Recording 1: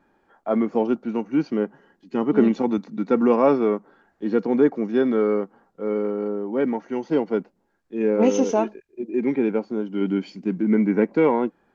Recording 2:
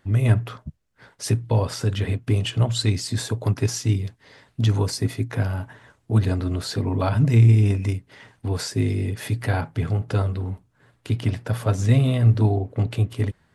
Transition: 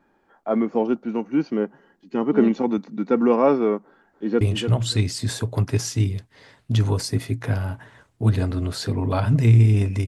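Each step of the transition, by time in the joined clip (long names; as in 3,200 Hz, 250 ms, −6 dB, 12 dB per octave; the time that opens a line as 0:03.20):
recording 1
0:03.84–0:04.41: delay throw 290 ms, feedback 15%, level −7.5 dB
0:04.41: continue with recording 2 from 0:02.30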